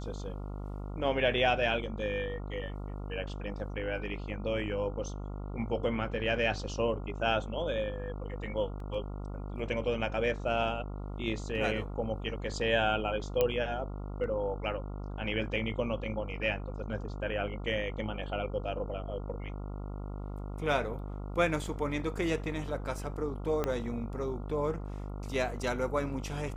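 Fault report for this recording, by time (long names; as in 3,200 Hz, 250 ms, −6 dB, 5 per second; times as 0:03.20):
mains buzz 50 Hz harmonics 28 −39 dBFS
0:08.80: drop-out 2.4 ms
0:13.41: click −14 dBFS
0:23.64: click −17 dBFS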